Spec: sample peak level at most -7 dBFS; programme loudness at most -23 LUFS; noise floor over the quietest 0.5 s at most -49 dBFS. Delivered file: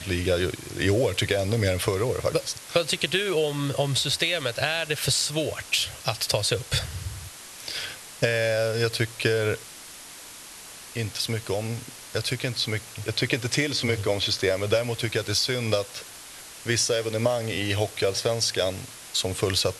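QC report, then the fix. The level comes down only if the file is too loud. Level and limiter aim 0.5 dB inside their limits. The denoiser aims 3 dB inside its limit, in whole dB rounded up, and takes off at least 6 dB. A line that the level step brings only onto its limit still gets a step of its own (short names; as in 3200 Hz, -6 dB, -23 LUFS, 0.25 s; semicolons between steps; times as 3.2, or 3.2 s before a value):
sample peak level -6.0 dBFS: fail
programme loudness -25.5 LUFS: OK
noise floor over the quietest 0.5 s -43 dBFS: fail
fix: denoiser 9 dB, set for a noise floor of -43 dBFS; limiter -7.5 dBFS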